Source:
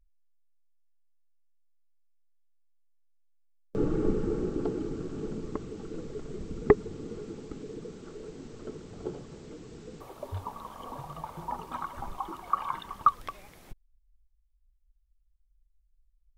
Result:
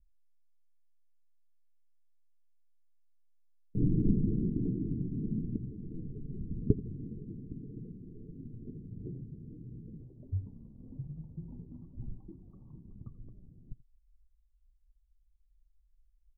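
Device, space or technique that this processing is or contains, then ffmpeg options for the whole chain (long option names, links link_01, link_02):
the neighbour's flat through the wall: -filter_complex "[0:a]asettb=1/sr,asplit=3[link_01][link_02][link_03];[link_01]atrim=end=3.824[link_04];[link_02]atrim=start=3.82:end=5.57,asetpts=PTS-STARTPTS,afade=type=in:duration=0.004:curve=qsin,afade=type=out:start_time=1.746:duration=0.004:curve=qsin,equalizer=frequency=210:width_type=o:width=0.97:gain=5[link_05];[link_03]atrim=start=5.566[link_06];[link_04][link_05]acrossfade=duration=0.004:curve1=hsin:curve2=qsin[link_07];[link_07][link_06]acrossfade=duration=0.004:curve1=qsin:curve2=hsin,lowpass=frequency=270:width=0.5412,lowpass=frequency=270:width=1.3066,equalizer=frequency=120:width_type=o:width=0.55:gain=7.5,aecho=1:1:83:0.112"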